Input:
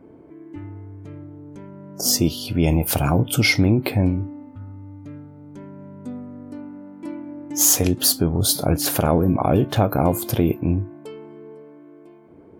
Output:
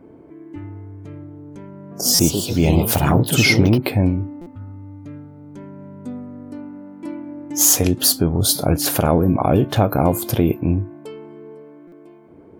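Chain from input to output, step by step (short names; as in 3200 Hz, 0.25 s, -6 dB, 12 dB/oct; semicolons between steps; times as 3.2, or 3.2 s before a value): 1.7–3.92 echoes that change speed 0.213 s, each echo +3 st, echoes 2, each echo -6 dB; stuck buffer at 2.14/4.41/11.87, samples 256, times 8; gain +2 dB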